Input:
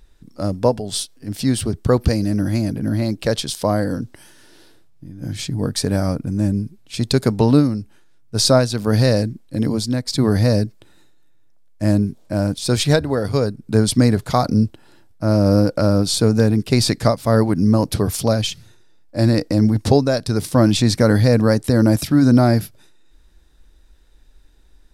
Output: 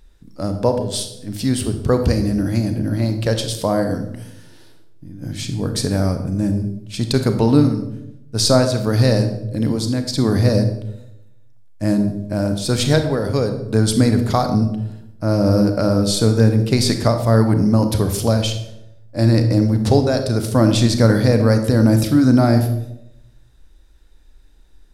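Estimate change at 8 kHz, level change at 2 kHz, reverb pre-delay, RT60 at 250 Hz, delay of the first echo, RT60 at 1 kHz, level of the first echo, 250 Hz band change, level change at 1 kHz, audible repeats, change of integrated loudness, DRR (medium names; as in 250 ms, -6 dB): -0.5 dB, -0.5 dB, 31 ms, 0.95 s, no echo, 0.70 s, no echo, +0.5 dB, 0.0 dB, no echo, +0.5 dB, 7.0 dB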